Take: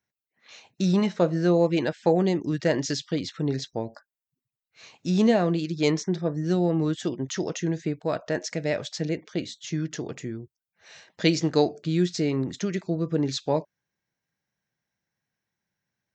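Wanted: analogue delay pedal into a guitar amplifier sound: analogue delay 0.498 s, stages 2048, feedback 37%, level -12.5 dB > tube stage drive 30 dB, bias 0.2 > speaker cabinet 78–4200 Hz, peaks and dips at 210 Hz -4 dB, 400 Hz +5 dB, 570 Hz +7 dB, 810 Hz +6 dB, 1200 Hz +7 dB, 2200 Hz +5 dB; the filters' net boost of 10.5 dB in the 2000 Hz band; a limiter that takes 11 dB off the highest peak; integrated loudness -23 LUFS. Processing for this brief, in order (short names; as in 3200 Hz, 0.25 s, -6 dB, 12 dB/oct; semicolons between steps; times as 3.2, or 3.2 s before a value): bell 2000 Hz +8.5 dB; limiter -16.5 dBFS; analogue delay 0.498 s, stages 2048, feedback 37%, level -12.5 dB; tube stage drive 30 dB, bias 0.2; speaker cabinet 78–4200 Hz, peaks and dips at 210 Hz -4 dB, 400 Hz +5 dB, 570 Hz +7 dB, 810 Hz +6 dB, 1200 Hz +7 dB, 2200 Hz +5 dB; gain +9.5 dB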